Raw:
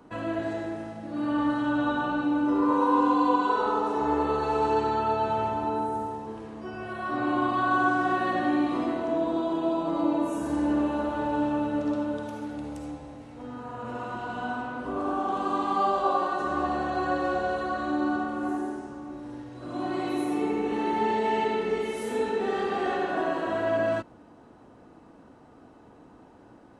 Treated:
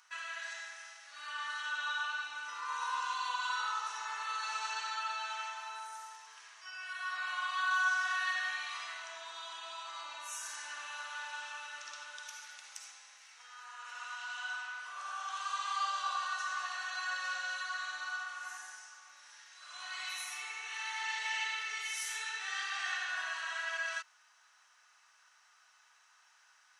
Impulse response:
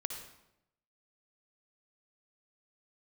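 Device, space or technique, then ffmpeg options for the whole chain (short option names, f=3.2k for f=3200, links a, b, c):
headphones lying on a table: -af "highpass=f=1.5k:w=0.5412,highpass=f=1.5k:w=1.3066,equalizer=f=5.9k:t=o:w=0.46:g=12,volume=2dB"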